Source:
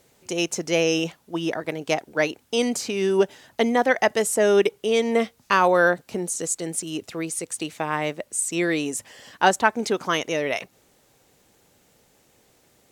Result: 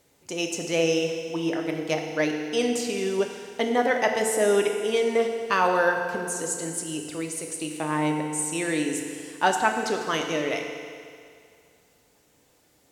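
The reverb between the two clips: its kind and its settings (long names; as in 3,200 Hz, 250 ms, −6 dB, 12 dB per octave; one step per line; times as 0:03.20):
feedback delay network reverb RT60 2.2 s, low-frequency decay 0.85×, high-frequency decay 1×, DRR 2.5 dB
level −4.5 dB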